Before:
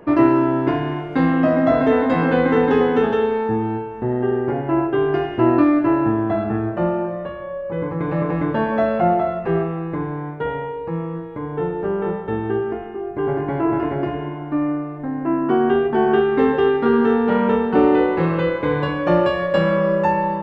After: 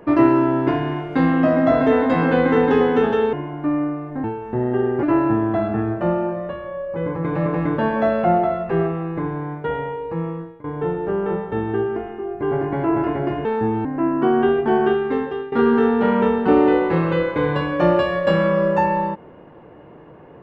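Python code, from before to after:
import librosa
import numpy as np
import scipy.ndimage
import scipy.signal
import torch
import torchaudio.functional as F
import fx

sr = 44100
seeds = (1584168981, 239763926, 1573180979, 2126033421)

y = fx.edit(x, sr, fx.swap(start_s=3.33, length_s=0.4, other_s=14.21, other_length_s=0.91),
    fx.cut(start_s=4.52, length_s=1.27),
    fx.fade_out_to(start_s=11.06, length_s=0.34, floor_db=-19.0),
    fx.fade_out_to(start_s=15.99, length_s=0.8, floor_db=-17.0), tone=tone)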